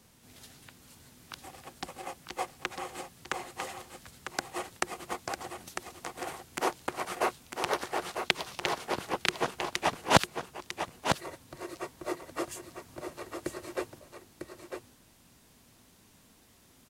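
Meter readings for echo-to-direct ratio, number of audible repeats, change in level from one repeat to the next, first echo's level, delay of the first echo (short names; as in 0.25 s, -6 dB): -6.5 dB, 1, no steady repeat, -6.5 dB, 0.95 s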